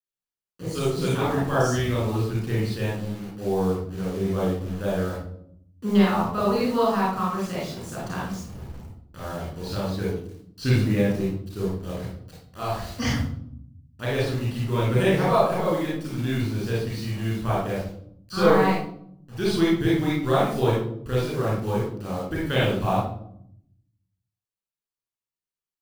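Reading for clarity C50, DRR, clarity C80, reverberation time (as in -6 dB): -1.0 dB, -6.5 dB, 5.0 dB, 0.65 s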